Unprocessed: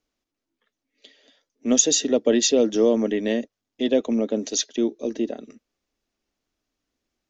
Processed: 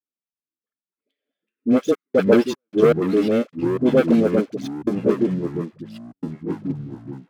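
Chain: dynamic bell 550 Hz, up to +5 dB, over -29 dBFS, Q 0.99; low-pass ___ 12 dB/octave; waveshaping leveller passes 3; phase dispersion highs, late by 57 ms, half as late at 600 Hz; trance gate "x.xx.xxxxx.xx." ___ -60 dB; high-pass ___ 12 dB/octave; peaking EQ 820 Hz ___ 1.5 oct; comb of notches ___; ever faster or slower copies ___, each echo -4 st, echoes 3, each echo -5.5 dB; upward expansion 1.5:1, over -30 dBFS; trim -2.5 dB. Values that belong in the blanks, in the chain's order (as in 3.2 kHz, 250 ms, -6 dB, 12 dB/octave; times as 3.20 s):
1.9 kHz, 77 bpm, 84 Hz, -5 dB, 930 Hz, 90 ms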